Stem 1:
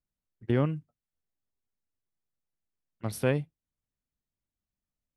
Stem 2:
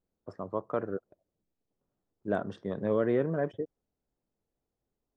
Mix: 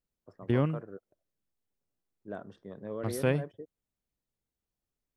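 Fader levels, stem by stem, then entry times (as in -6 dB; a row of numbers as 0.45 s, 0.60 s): -1.0 dB, -10.5 dB; 0.00 s, 0.00 s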